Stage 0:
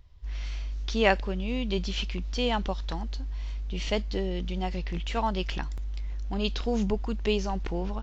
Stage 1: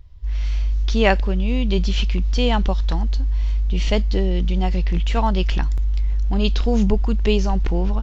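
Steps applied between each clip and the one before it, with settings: low shelf 160 Hz +9 dB; AGC gain up to 3 dB; gain +2.5 dB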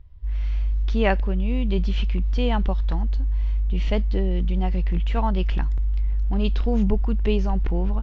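tone controls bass +2 dB, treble -14 dB; gain -4.5 dB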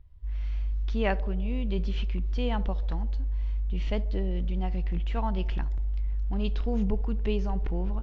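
narrowing echo 69 ms, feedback 77%, band-pass 500 Hz, level -17 dB; gain -6.5 dB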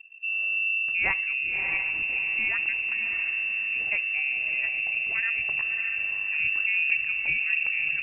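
diffused feedback echo 0.631 s, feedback 44%, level -5.5 dB; inverted band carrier 2700 Hz

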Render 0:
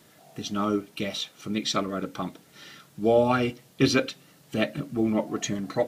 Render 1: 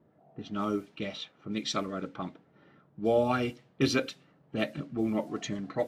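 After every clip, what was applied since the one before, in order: low-pass opened by the level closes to 720 Hz, open at -22 dBFS; gain -5 dB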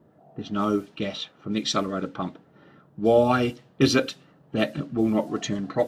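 bell 2200 Hz -6 dB 0.25 oct; gain +7 dB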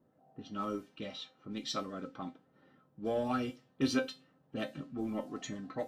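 in parallel at -6 dB: soft clip -18 dBFS, distortion -11 dB; on the sum: resonator 260 Hz, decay 0.2 s, harmonics all, mix 80%; gain -6 dB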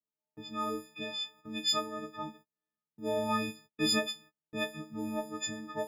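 frequency quantiser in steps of 6 st; gate -54 dBFS, range -35 dB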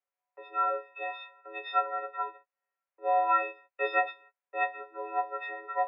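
mistuned SSB +110 Hz 420–2400 Hz; gain +7.5 dB

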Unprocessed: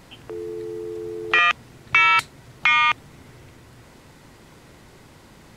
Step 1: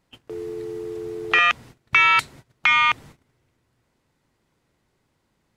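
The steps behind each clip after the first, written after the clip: gate -41 dBFS, range -22 dB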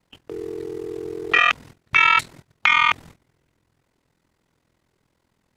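ring modulator 21 Hz; gain +3.5 dB

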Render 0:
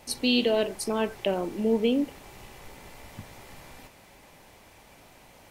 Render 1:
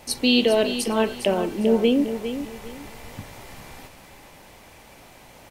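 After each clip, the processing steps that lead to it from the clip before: feedback echo 0.406 s, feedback 28%, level -10 dB; gain +5 dB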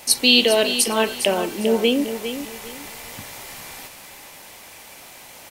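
tilt +2.5 dB/oct; gain +3.5 dB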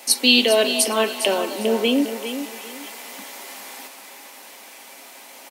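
Chebyshev high-pass 200 Hz, order 6; comb 7.4 ms, depth 35%; delay with a stepping band-pass 0.245 s, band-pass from 750 Hz, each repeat 0.7 oct, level -11 dB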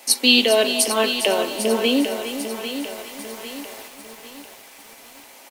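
in parallel at -6 dB: crossover distortion -31.5 dBFS; on the sum: lo-fi delay 0.798 s, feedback 55%, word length 6-bit, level -10 dB; gain -3 dB

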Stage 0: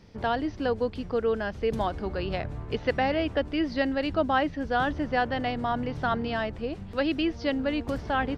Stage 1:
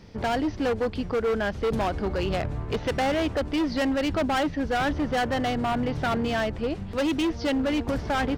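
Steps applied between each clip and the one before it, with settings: hard clip -26.5 dBFS, distortion -9 dB; gain +5 dB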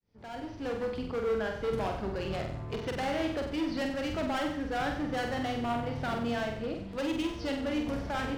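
opening faded in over 0.86 s; on a send: flutter echo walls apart 8 m, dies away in 0.64 s; on the sum: gain -8.5 dB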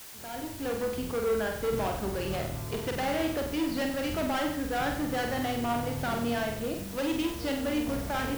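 requantised 8-bit, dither triangular; gain +2 dB

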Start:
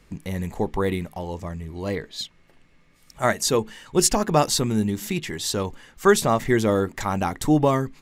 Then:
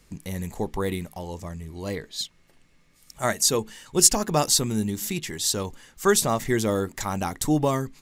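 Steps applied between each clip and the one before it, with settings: tone controls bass +1 dB, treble +9 dB; gain -4 dB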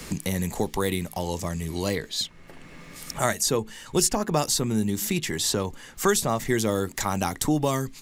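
three-band squash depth 70%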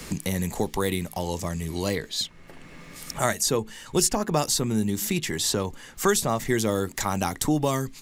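nothing audible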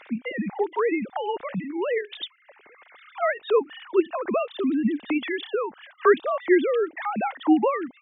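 sine-wave speech; gain +1.5 dB

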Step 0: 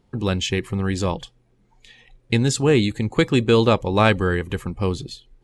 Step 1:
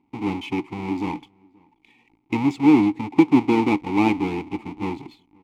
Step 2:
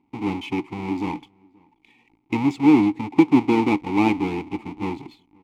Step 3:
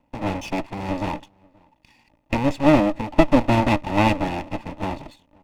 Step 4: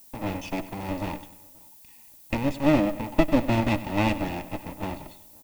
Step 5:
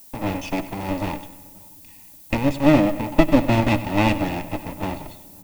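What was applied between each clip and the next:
half-waves squared off; vowel filter u; outdoor echo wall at 91 m, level -29 dB; gain +6 dB
nothing audible
minimum comb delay 1.1 ms; gain +2.5 dB
dynamic EQ 940 Hz, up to -4 dB, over -30 dBFS, Q 1.4; added noise violet -47 dBFS; feedback echo 96 ms, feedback 50%, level -16 dB; gain -4.5 dB
shoebox room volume 3700 m³, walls mixed, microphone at 0.3 m; gain +5 dB

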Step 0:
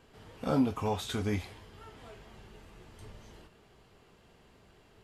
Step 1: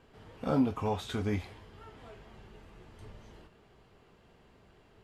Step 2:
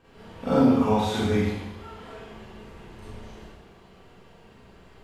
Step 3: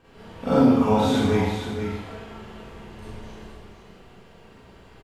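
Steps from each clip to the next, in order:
high shelf 4400 Hz -8.5 dB
Schroeder reverb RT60 0.87 s, combs from 33 ms, DRR -9 dB
echo 0.471 s -8 dB; gain +2 dB

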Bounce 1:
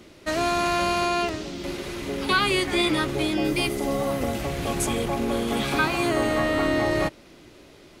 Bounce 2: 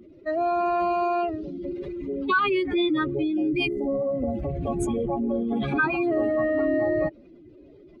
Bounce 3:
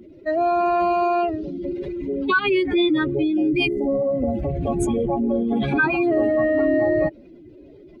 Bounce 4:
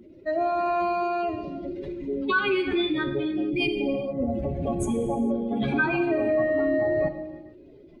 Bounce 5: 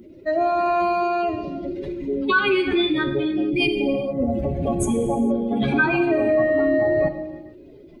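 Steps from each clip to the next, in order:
spectral contrast raised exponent 2.4
notch 1200 Hz, Q 6.5; gain +4.5 dB
non-linear reverb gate 0.48 s falling, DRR 6.5 dB; gain -4.5 dB
high shelf 7500 Hz +6.5 dB; gain +4.5 dB

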